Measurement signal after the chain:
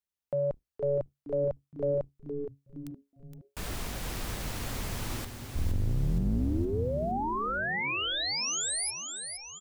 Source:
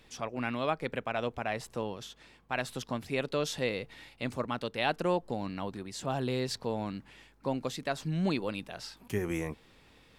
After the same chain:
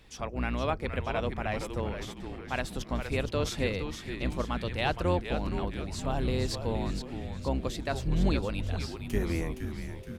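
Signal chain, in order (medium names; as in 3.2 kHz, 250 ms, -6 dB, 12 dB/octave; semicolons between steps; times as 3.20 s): octave divider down 2 oct, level +4 dB; frequency-shifting echo 467 ms, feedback 50%, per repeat -140 Hz, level -7.5 dB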